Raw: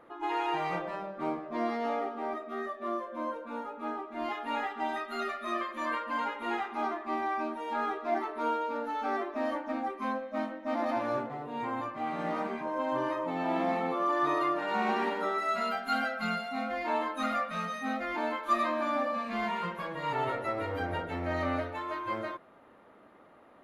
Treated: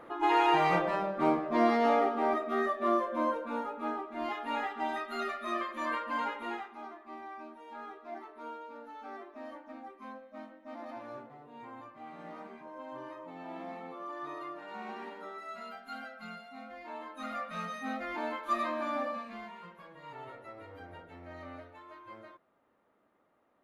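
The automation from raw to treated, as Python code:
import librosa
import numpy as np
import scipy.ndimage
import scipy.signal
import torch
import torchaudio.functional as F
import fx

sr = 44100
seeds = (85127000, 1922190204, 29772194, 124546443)

y = fx.gain(x, sr, db=fx.line((3.05, 6.0), (4.2, -1.0), (6.36, -1.0), (6.81, -13.0), (16.96, -13.0), (17.6, -3.5), (19.09, -3.5), (19.51, -15.0)))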